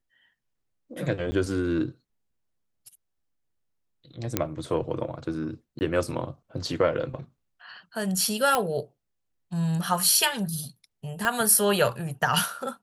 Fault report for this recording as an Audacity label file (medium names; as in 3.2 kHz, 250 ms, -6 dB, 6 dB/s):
1.310000	1.320000	dropout 10 ms
4.370000	4.370000	pop -7 dBFS
5.790000	5.810000	dropout 19 ms
8.550000	8.550000	pop -8 dBFS
11.250000	11.250000	pop -12 dBFS